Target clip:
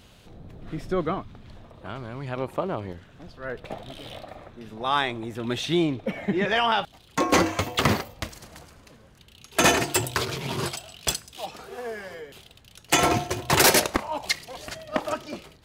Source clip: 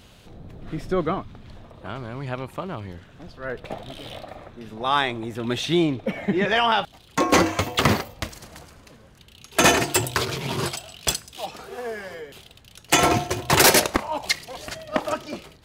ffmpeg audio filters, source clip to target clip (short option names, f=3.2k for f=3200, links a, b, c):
-filter_complex "[0:a]asettb=1/sr,asplit=3[a][b][c];[a]atrim=end=2.364[d];[b]atrim=start=2.36:end=2.93,asetpts=PTS-STARTPTS,afade=t=in:d=0.004:c=qsin,afade=t=out:st=0.566:d=0.004:c=qsin,equalizer=f=510:w=0.62:g=8.5[e];[c]atrim=start=2.926[f];[d][e]acrossfade=d=0.004:c1=hsin:c2=qsin[g];[g][f]acrossfade=d=0.004:c1=qsin:c2=hsin,volume=-2.5dB"